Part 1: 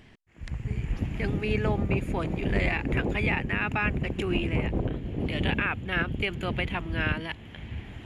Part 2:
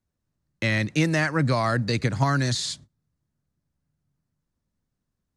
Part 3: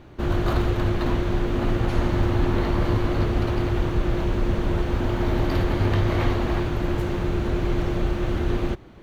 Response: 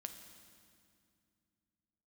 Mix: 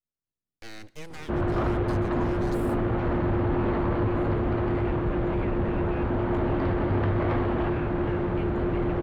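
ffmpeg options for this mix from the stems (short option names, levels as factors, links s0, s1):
-filter_complex "[0:a]adelay=2150,volume=0.141[s0];[1:a]aeval=exprs='abs(val(0))':c=same,volume=0.126,asplit=2[s1][s2];[s2]volume=0.335[s3];[2:a]lowpass=1600,lowshelf=f=65:g=-11.5,adelay=1100,volume=1.26[s4];[3:a]atrim=start_sample=2205[s5];[s3][s5]afir=irnorm=-1:irlink=0[s6];[s0][s1][s4][s6]amix=inputs=4:normalize=0,asoftclip=type=tanh:threshold=0.119"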